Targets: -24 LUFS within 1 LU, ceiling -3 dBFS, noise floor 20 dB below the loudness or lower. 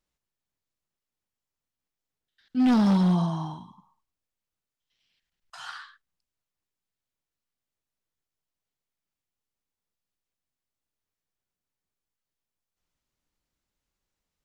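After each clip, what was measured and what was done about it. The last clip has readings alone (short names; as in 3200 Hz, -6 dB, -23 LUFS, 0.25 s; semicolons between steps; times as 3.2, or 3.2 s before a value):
clipped 0.7%; flat tops at -17.5 dBFS; loudness -23.5 LUFS; peak -17.5 dBFS; loudness target -24.0 LUFS
-> clip repair -17.5 dBFS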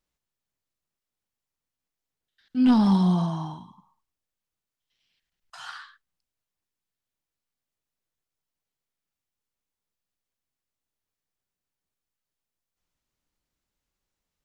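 clipped 0.0%; loudness -22.0 LUFS; peak -11.0 dBFS; loudness target -24.0 LUFS
-> gain -2 dB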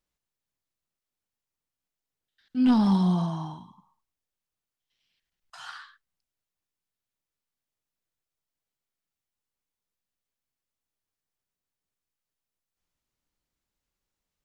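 loudness -24.0 LUFS; peak -13.0 dBFS; noise floor -90 dBFS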